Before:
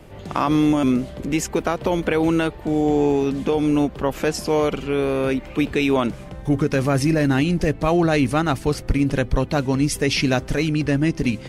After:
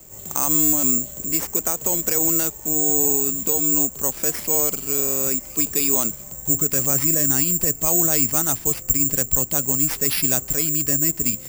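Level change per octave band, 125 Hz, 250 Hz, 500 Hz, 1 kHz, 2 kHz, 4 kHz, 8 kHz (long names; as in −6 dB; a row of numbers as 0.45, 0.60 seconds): −8.5, −8.5, −8.5, −8.5, −8.0, −3.0, +18.0 decibels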